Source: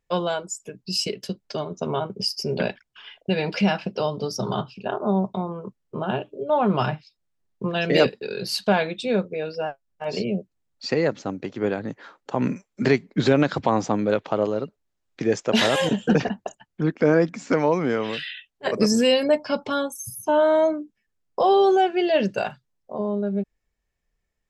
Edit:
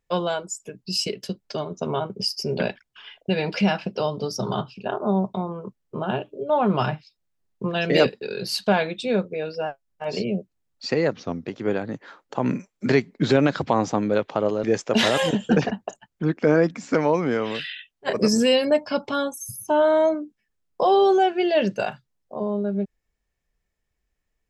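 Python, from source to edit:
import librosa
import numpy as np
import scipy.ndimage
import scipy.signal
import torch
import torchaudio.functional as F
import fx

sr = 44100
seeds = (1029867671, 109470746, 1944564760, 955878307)

y = fx.edit(x, sr, fx.speed_span(start_s=11.13, length_s=0.3, speed=0.89),
    fx.cut(start_s=14.6, length_s=0.62), tone=tone)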